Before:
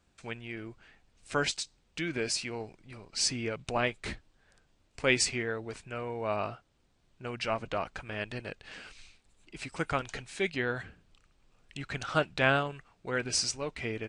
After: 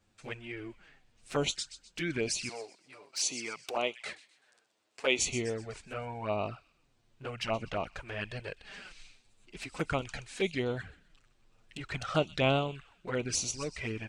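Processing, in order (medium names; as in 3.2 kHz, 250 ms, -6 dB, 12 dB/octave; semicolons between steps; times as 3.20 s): 2.49–5.19 s: high-pass 400 Hz 12 dB/octave; feedback echo behind a high-pass 126 ms, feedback 38%, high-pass 3.3 kHz, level -12 dB; touch-sensitive flanger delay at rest 9.7 ms, full sweep at -28 dBFS; trim +2 dB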